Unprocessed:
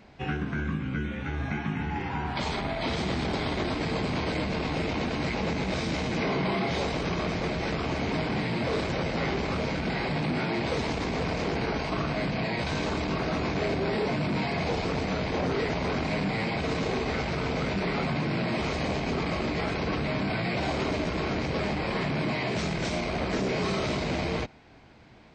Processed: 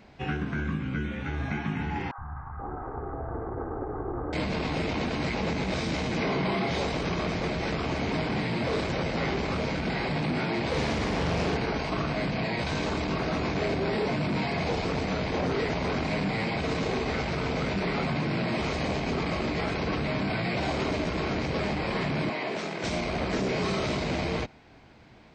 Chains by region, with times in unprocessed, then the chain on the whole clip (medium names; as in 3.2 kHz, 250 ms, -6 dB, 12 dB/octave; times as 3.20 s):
2.11–4.33 s: comb filter that takes the minimum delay 2.5 ms + steep low-pass 1.4 kHz 48 dB/octave + three bands offset in time highs, lows, mids 70/480 ms, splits 180/960 Hz
10.70–11.57 s: flutter echo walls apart 7 m, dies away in 0.57 s + loudspeaker Doppler distortion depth 0.32 ms
22.29–22.84 s: high-pass 280 Hz + treble shelf 3.5 kHz -7 dB
whole clip: none